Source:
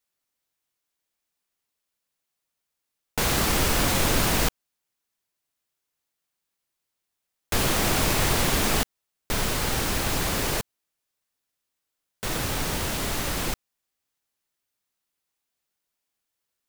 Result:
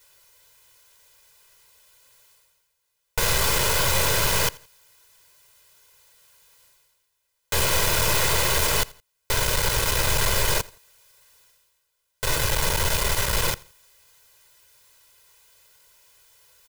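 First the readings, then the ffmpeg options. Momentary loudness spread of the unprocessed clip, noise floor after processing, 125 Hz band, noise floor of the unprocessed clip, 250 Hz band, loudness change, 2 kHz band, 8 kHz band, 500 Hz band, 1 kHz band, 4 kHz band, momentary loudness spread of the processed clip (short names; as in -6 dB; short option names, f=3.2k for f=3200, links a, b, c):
9 LU, -75 dBFS, +0.5 dB, -83 dBFS, -7.5 dB, +2.5 dB, +3.0 dB, +3.5 dB, +1.5 dB, +1.5 dB, +3.0 dB, 7 LU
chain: -af "afftfilt=real='re*lt(hypot(re,im),0.501)':imag='im*lt(hypot(re,im),0.501)':win_size=1024:overlap=0.75,equalizer=f=270:t=o:w=0.61:g=-14,aecho=1:1:2:0.86,areverse,acompressor=mode=upward:threshold=-46dB:ratio=2.5,areverse,aeval=exprs='(tanh(28.2*val(0)+0.7)-tanh(0.7))/28.2':c=same,aecho=1:1:84|168:0.0708|0.0248,volume=9dB"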